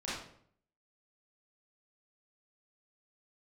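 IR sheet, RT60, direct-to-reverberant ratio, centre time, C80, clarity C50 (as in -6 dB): 0.60 s, -9.5 dB, 62 ms, 5.0 dB, -0.5 dB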